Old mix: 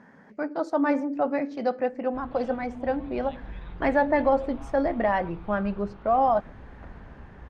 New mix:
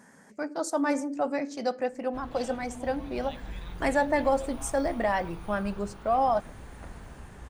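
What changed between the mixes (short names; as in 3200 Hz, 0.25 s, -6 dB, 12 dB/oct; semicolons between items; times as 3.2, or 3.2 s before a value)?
speech -4.0 dB; master: remove air absorption 310 m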